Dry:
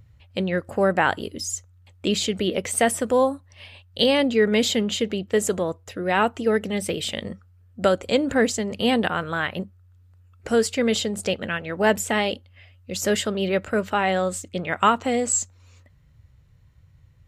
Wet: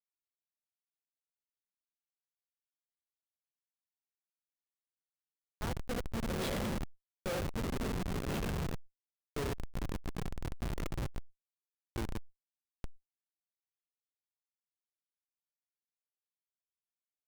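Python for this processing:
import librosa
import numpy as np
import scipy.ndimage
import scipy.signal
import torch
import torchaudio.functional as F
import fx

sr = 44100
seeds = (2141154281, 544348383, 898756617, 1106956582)

p1 = fx.doppler_pass(x, sr, speed_mps=30, closest_m=3.9, pass_at_s=6.67)
p2 = fx.level_steps(p1, sr, step_db=13)
p3 = p1 + (p2 * 10.0 ** (3.0 / 20.0))
p4 = fx.hum_notches(p3, sr, base_hz=60, count=7)
p5 = p4 + fx.echo_feedback(p4, sr, ms=88, feedback_pct=32, wet_db=-7.0, dry=0)
p6 = fx.rev_gated(p5, sr, seeds[0], gate_ms=480, shape='falling', drr_db=4.0)
p7 = fx.echo_pitch(p6, sr, ms=219, semitones=-4, count=2, db_per_echo=-3.0)
p8 = fx.schmitt(p7, sr, flips_db=-25.5)
y = fx.sustainer(p8, sr, db_per_s=150.0)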